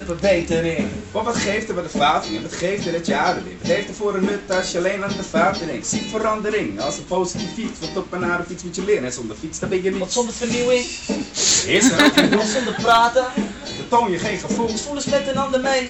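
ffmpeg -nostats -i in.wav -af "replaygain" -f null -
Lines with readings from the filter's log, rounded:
track_gain = -1.3 dB
track_peak = 0.434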